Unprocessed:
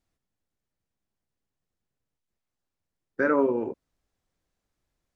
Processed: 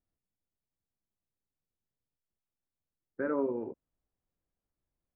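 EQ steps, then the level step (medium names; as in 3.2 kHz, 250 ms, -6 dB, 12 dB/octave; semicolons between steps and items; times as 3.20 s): low-pass 1 kHz 6 dB/octave; distance through air 150 m; -7.0 dB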